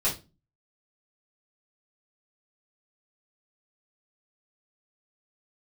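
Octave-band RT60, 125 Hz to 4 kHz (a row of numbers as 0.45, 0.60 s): 0.50, 0.50, 0.30, 0.25, 0.25, 0.25 s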